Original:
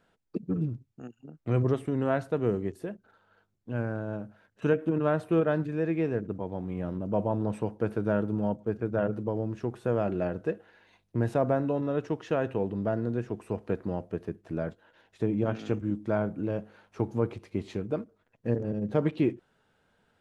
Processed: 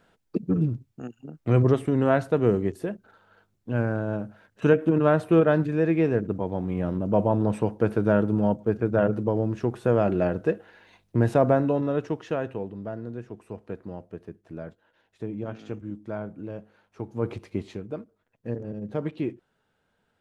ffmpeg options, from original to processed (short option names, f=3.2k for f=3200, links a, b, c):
-af "volume=16.5dB,afade=t=out:st=11.49:d=1.25:silence=0.266073,afade=t=in:st=17.15:d=0.19:silence=0.298538,afade=t=out:st=17.34:d=0.47:silence=0.375837"